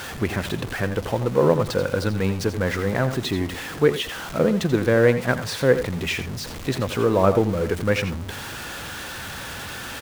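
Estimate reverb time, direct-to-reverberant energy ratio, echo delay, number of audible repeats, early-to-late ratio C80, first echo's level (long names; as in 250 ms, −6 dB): no reverb audible, no reverb audible, 84 ms, 1, no reverb audible, −12.0 dB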